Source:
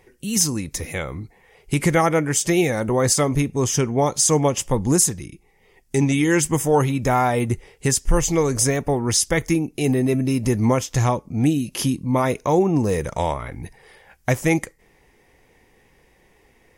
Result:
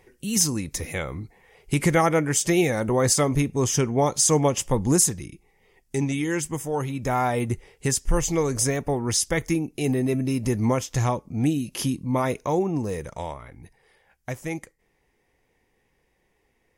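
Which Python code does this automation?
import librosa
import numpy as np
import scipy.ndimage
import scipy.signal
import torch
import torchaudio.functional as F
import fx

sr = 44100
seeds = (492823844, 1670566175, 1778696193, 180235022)

y = fx.gain(x, sr, db=fx.line((5.26, -2.0), (6.72, -10.0), (7.25, -4.0), (12.3, -4.0), (13.55, -12.0)))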